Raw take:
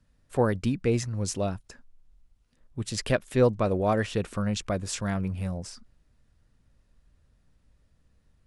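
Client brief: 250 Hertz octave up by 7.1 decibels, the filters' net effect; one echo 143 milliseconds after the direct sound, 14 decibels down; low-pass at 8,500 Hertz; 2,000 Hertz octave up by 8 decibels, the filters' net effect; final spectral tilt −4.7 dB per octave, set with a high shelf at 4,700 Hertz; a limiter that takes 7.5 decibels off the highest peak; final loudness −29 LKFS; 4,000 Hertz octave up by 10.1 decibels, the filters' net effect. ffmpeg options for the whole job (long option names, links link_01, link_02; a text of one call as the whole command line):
ffmpeg -i in.wav -af "lowpass=8500,equalizer=frequency=250:width_type=o:gain=8.5,equalizer=frequency=2000:width_type=o:gain=7,equalizer=frequency=4000:width_type=o:gain=7.5,highshelf=frequency=4700:gain=7,alimiter=limit=-13dB:level=0:latency=1,aecho=1:1:143:0.2,volume=-4dB" out.wav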